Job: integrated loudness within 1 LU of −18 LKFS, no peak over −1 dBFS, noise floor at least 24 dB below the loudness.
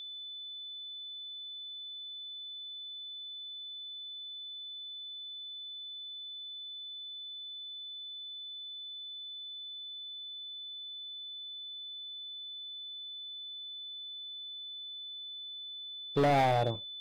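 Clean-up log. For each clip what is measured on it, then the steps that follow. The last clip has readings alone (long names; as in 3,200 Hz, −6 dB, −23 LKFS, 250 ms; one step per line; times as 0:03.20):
share of clipped samples 0.6%; peaks flattened at −23.0 dBFS; interfering tone 3,500 Hz; level of the tone −41 dBFS; integrated loudness −38.0 LKFS; sample peak −23.0 dBFS; target loudness −18.0 LKFS
→ clipped peaks rebuilt −23 dBFS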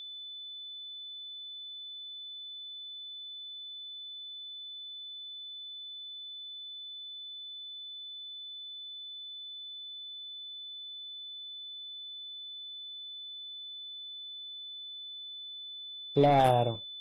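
share of clipped samples 0.0%; interfering tone 3,500 Hz; level of the tone −41 dBFS
→ notch filter 3,500 Hz, Q 30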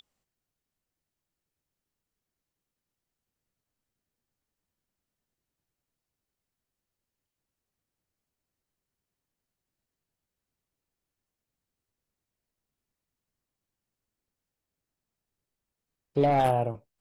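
interfering tone none found; integrated loudness −26.0 LKFS; sample peak −13.5 dBFS; target loudness −18.0 LKFS
→ level +8 dB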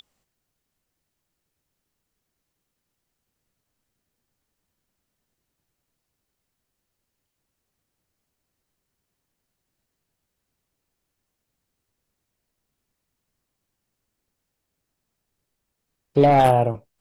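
integrated loudness −18.0 LKFS; sample peak −5.5 dBFS; background noise floor −81 dBFS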